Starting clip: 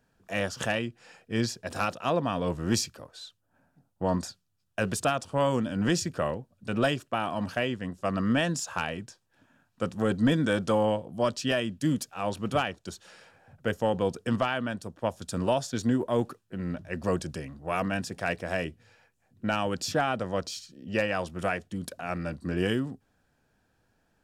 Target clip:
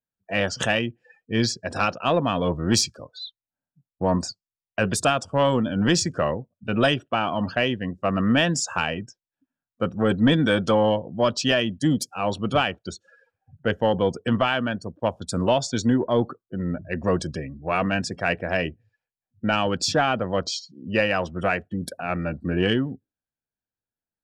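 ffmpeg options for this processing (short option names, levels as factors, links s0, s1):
-filter_complex "[0:a]afftdn=nr=33:nf=-44,adynamicequalizer=threshold=0.00447:dfrequency=3800:dqfactor=0.95:tfrequency=3800:tqfactor=0.95:attack=5:release=100:ratio=0.375:range=2.5:mode=boostabove:tftype=bell,asplit=2[s0][s1];[s1]asoftclip=type=tanh:threshold=0.0668,volume=0.335[s2];[s0][s2]amix=inputs=2:normalize=0,volume=1.5"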